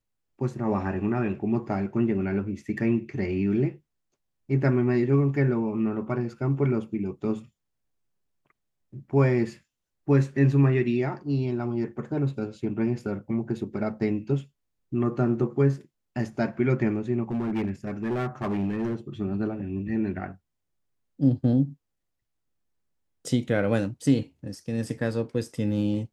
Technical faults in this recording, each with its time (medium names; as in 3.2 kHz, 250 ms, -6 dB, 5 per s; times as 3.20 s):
17.31–18.96 s: clipped -23.5 dBFS